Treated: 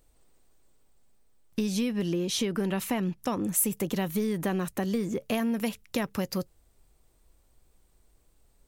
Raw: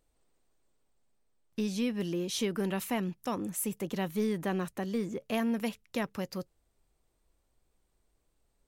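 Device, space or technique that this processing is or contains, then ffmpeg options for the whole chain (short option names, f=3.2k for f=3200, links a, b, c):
ASMR close-microphone chain: -filter_complex "[0:a]lowshelf=f=140:g=4.5,acompressor=threshold=-32dB:ratio=6,highshelf=f=7.9k:g=6.5,asettb=1/sr,asplit=3[a][b][c];[a]atrim=end=1.934[d];[b]atrim=start=1.93:end=3.5,asetpts=PTS-STARTPTS,afade=t=in:d=0.004:c=qsin,afade=t=out:st=1.566:d=0.004:c=qsin,highshelf=f=8.5k:g=-9.5[e];[c]atrim=start=3.496[f];[d][e]acrossfade=d=0.004:c1=hsin:c2=qsin[g];[g][f]acrossfade=d=0.004:c1=qsin:c2=hsin,volume=7dB"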